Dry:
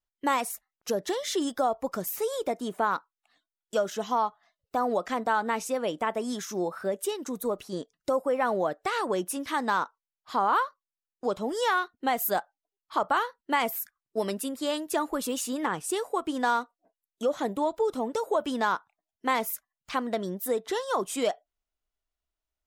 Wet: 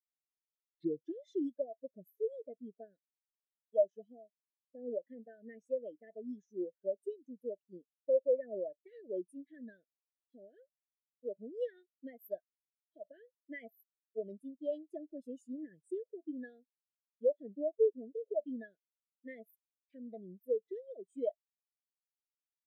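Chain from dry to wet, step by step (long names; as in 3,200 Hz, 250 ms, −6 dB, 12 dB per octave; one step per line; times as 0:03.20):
turntable start at the beginning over 1.21 s
elliptic band-stop filter 640–1,700 Hz, stop band 40 dB
every bin expanded away from the loudest bin 2.5 to 1
level −3 dB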